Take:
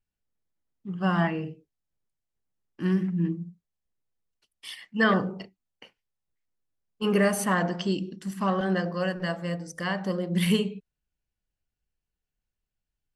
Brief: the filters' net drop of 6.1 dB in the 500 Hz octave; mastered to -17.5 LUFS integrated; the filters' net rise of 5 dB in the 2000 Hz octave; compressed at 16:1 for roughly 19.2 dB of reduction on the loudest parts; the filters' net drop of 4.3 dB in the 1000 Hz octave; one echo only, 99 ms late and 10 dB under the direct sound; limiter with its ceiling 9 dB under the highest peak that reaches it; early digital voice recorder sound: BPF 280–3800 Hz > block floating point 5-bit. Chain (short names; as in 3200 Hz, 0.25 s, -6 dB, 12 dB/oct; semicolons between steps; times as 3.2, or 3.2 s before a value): bell 500 Hz -6 dB; bell 1000 Hz -6.5 dB; bell 2000 Hz +9 dB; compressor 16:1, threshold -35 dBFS; limiter -32.5 dBFS; BPF 280–3800 Hz; echo 99 ms -10 dB; block floating point 5-bit; gain +28 dB